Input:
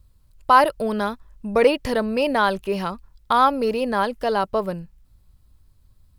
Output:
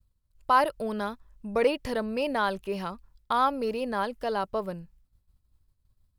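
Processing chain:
downward expander −47 dBFS
level −7.5 dB

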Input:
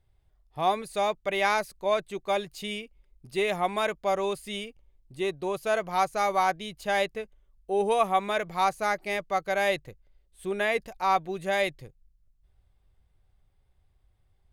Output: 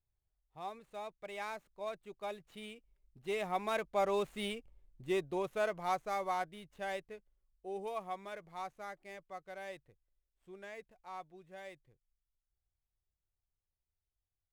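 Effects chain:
running median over 9 samples
source passing by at 0:04.65, 9 m/s, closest 5.6 metres
level −2 dB

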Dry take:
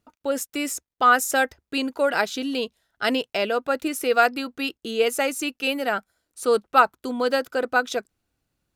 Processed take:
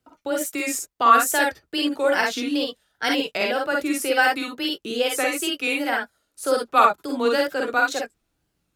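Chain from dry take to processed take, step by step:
tape wow and flutter 140 cents
convolution reverb, pre-delay 39 ms, DRR 0.5 dB
frequency shifter +14 Hz
dynamic equaliser 600 Hz, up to −3 dB, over −29 dBFS, Q 0.82

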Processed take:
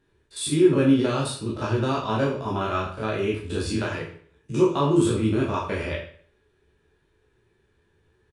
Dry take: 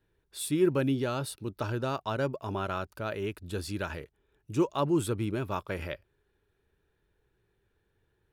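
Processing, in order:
spectrum averaged block by block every 50 ms
in parallel at −1.5 dB: brickwall limiter −25.5 dBFS, peak gain reduction 9 dB
0:03.73–0:04.68: on the sum: frequency shifter +17 Hz
convolution reverb RT60 0.50 s, pre-delay 12 ms, DRR −3 dB
downsampling to 22,050 Hz

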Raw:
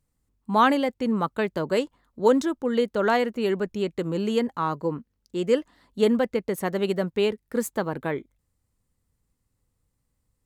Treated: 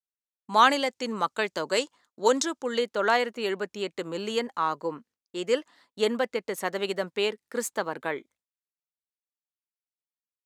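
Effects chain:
meter weighting curve A
downward expander −52 dBFS
parametric band 6,500 Hz +12 dB 1.4 octaves, from 0:02.79 +4 dB

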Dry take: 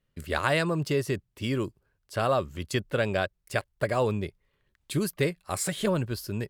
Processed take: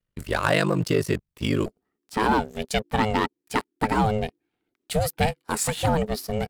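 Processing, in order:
leveller curve on the samples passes 2
ring modulation 25 Hz, from 0:01.66 320 Hz

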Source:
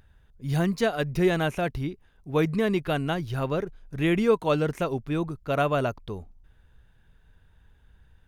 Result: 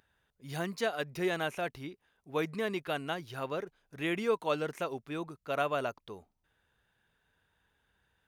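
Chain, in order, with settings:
high-pass filter 520 Hz 6 dB per octave
level −4.5 dB

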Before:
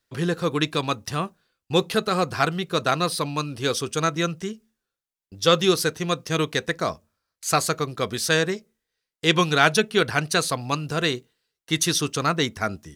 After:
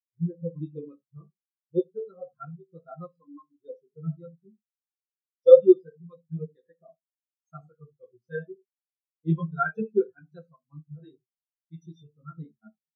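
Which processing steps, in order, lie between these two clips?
0:00.71–0:01.23: dynamic equaliser 400 Hz, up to +7 dB, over −40 dBFS, Q 1.8
flanger 0.3 Hz, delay 9.9 ms, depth 7.5 ms, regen −18%
convolution reverb, pre-delay 6 ms, DRR 3 dB
every bin expanded away from the loudest bin 4 to 1
level +3.5 dB

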